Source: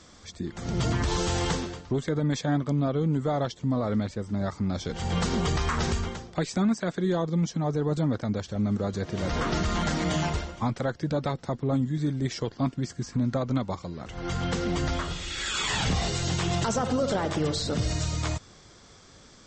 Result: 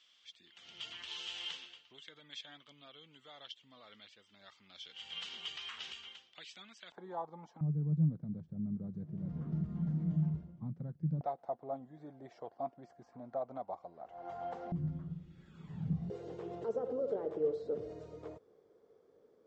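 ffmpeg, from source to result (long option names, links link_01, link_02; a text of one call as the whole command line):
ffmpeg -i in.wav -af "asetnsamples=nb_out_samples=441:pad=0,asendcmd='6.92 bandpass f 850;7.61 bandpass f 160;11.21 bandpass f 710;14.72 bandpass f 160;16.1 bandpass f 450',bandpass=frequency=3000:width_type=q:width=6.4:csg=0" out.wav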